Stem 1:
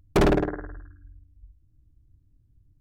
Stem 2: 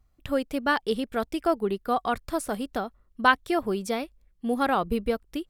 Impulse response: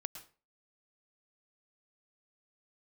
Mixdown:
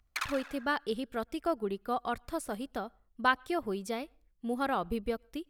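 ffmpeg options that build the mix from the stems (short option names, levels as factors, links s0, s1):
-filter_complex "[0:a]aphaser=in_gain=1:out_gain=1:delay=3.6:decay=0.64:speed=0.69:type=sinusoidal,highpass=f=1200:w=0.5412,highpass=f=1200:w=1.3066,volume=0.501,asplit=2[s0][s1];[s1]volume=0.335[s2];[1:a]volume=0.422,asplit=3[s3][s4][s5];[s4]volume=0.0841[s6];[s5]apad=whole_len=123636[s7];[s0][s7]sidechaincompress=threshold=0.00316:ratio=8:attack=16:release=390[s8];[2:a]atrim=start_sample=2205[s9];[s6][s9]afir=irnorm=-1:irlink=0[s10];[s2]aecho=0:1:74|148|222|296|370|444:1|0.46|0.212|0.0973|0.0448|0.0206[s11];[s8][s3][s10][s11]amix=inputs=4:normalize=0"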